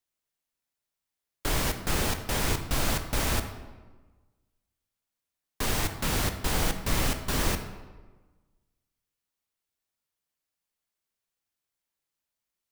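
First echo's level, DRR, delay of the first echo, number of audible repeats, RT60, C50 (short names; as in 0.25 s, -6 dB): none, 7.0 dB, none, none, 1.3 s, 9.5 dB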